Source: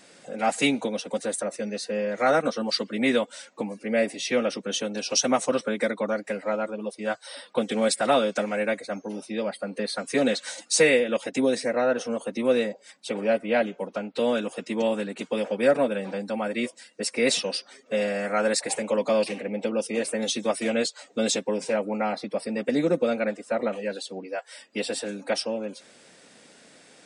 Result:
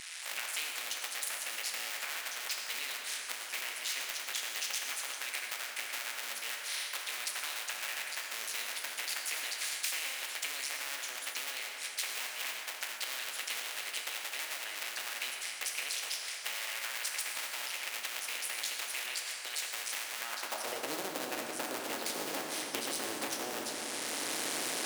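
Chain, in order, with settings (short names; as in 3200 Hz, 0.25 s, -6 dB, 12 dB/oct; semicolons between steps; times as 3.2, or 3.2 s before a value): cycle switcher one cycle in 2, muted; recorder AGC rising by 20 dB/s; low shelf 270 Hz -10.5 dB; compressor, threshold -33 dBFS, peak gain reduction 14.5 dB; high-pass sweep 2000 Hz -> 280 Hz, 21.93–22.78; speed mistake 44.1 kHz file played as 48 kHz; reverb RT60 2.4 s, pre-delay 5 ms, DRR 1.5 dB; spectral compressor 2:1; gain +1.5 dB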